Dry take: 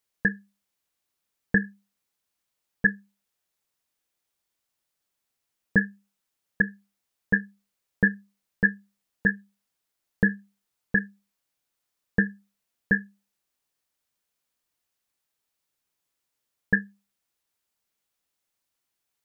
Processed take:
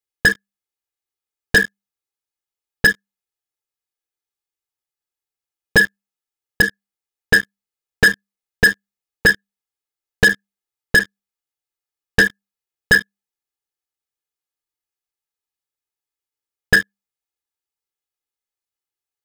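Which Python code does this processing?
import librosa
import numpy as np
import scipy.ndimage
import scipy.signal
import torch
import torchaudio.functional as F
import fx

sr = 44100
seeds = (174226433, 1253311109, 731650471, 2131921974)

y = x + 0.75 * np.pad(x, (int(2.4 * sr / 1000.0), 0))[:len(x)]
y = fx.leveller(y, sr, passes=5)
y = y * 10.0 ** (-1.5 / 20.0)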